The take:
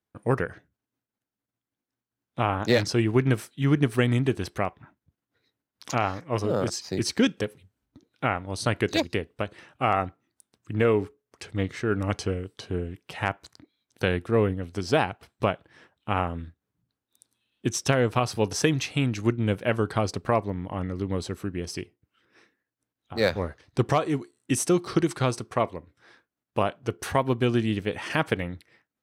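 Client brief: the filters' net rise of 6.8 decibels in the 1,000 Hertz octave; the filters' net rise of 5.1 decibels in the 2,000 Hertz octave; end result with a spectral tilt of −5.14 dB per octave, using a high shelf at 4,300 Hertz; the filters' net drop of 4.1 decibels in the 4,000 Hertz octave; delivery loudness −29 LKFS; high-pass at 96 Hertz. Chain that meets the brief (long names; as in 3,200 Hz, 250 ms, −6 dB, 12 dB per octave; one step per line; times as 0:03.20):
high-pass filter 96 Hz
parametric band 1,000 Hz +8 dB
parametric band 2,000 Hz +6 dB
parametric band 4,000 Hz −6 dB
high-shelf EQ 4,300 Hz −5 dB
level −4.5 dB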